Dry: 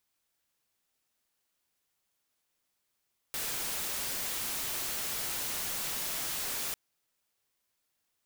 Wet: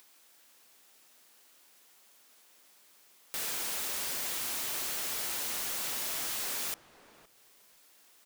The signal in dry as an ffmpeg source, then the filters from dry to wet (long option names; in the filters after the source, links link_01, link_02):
-f lavfi -i "anoisesrc=color=white:amplitude=0.0308:duration=3.4:sample_rate=44100:seed=1"
-filter_complex "[0:a]acrossover=split=200[link_01][link_02];[link_01]alimiter=level_in=32.5dB:limit=-24dB:level=0:latency=1:release=427,volume=-32.5dB[link_03];[link_02]acompressor=mode=upward:threshold=-45dB:ratio=2.5[link_04];[link_03][link_04]amix=inputs=2:normalize=0,asplit=2[link_05][link_06];[link_06]adelay=516,lowpass=frequency=810:poles=1,volume=-11dB,asplit=2[link_07][link_08];[link_08]adelay=516,lowpass=frequency=810:poles=1,volume=0.18[link_09];[link_05][link_07][link_09]amix=inputs=3:normalize=0"